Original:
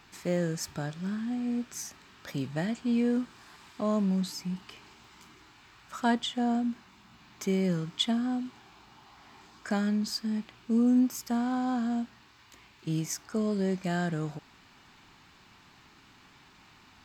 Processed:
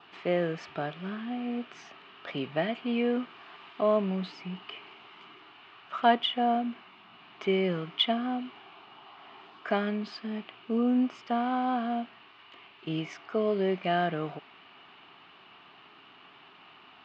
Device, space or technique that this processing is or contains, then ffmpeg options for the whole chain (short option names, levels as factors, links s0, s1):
kitchen radio: -af "highpass=190,equalizer=f=220:t=q:w=4:g=-3,equalizer=f=410:t=q:w=4:g=6,equalizer=f=680:t=q:w=4:g=9,equalizer=f=1200:t=q:w=4:g=7,equalizer=f=2900:t=q:w=4:g=10,lowpass=f=3600:w=0.5412,lowpass=f=3600:w=1.3066,adynamicequalizer=threshold=0.00178:dfrequency=2200:dqfactor=4.5:tfrequency=2200:tqfactor=4.5:attack=5:release=100:ratio=0.375:range=3:mode=boostabove:tftype=bell"